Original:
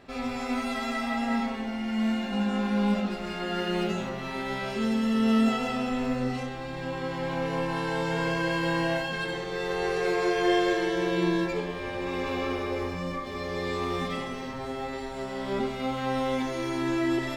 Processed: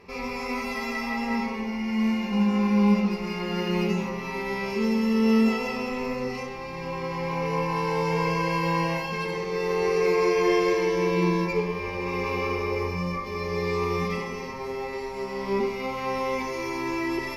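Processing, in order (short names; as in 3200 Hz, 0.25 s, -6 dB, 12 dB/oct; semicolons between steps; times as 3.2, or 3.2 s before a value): ripple EQ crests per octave 0.83, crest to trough 14 dB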